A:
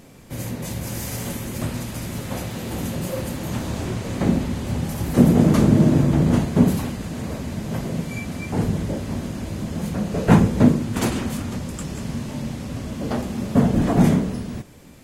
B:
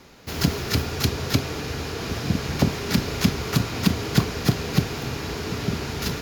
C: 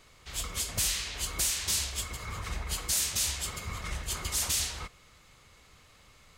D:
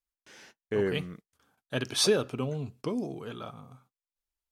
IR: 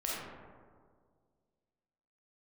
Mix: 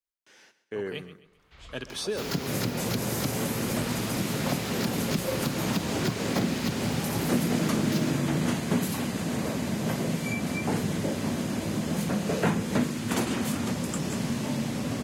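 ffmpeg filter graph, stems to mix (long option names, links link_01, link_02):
-filter_complex "[0:a]highpass=150,adelay=2150,volume=3dB[link_01];[1:a]highpass=frequency=120:width=0.5412,highpass=frequency=120:width=1.3066,acompressor=mode=upward:threshold=-34dB:ratio=2.5,adelay=1900,volume=-3.5dB[link_02];[2:a]lowpass=3100,adelay=1250,volume=-8.5dB,asplit=2[link_03][link_04];[link_04]volume=-6dB[link_05];[3:a]lowshelf=frequency=160:gain=-9,volume=-3.5dB,asplit=3[link_06][link_07][link_08];[link_07]volume=-15dB[link_09];[link_08]apad=whole_len=336328[link_10];[link_03][link_10]sidechaincompress=threshold=-49dB:ratio=8:attack=16:release=241[link_11];[link_05][link_09]amix=inputs=2:normalize=0,aecho=0:1:131|262|393|524|655:1|0.36|0.13|0.0467|0.0168[link_12];[link_01][link_02][link_11][link_06][link_12]amix=inputs=5:normalize=0,acrossover=split=82|1300[link_13][link_14][link_15];[link_13]acompressor=threshold=-46dB:ratio=4[link_16];[link_14]acompressor=threshold=-26dB:ratio=4[link_17];[link_15]acompressor=threshold=-33dB:ratio=4[link_18];[link_16][link_17][link_18]amix=inputs=3:normalize=0"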